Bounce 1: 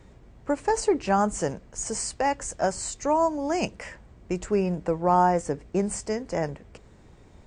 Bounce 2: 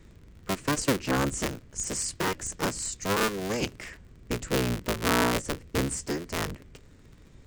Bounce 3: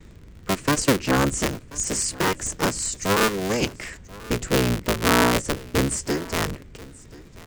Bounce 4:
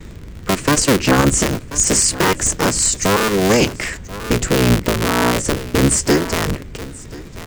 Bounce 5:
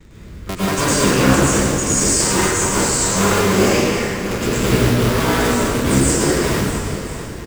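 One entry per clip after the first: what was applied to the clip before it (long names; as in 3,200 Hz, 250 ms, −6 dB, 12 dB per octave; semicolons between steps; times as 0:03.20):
sub-harmonics by changed cycles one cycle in 3, inverted; parametric band 760 Hz −10.5 dB 1.1 octaves
single-tap delay 1,034 ms −21 dB; noise gate with hold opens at −47 dBFS; level +6 dB
in parallel at −10.5 dB: floating-point word with a short mantissa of 2 bits; on the sum: boost into a limiter +12 dB; level −3 dB
single-tap delay 649 ms −13 dB; convolution reverb RT60 2.0 s, pre-delay 93 ms, DRR −9.5 dB; level −10 dB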